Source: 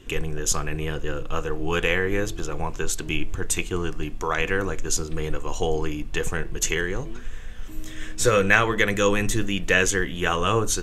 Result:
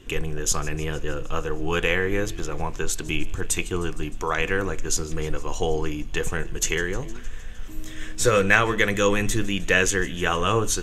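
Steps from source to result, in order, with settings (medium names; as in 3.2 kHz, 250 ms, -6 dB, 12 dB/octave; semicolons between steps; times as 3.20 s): feedback echo behind a high-pass 154 ms, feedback 71%, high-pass 2.6 kHz, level -19.5 dB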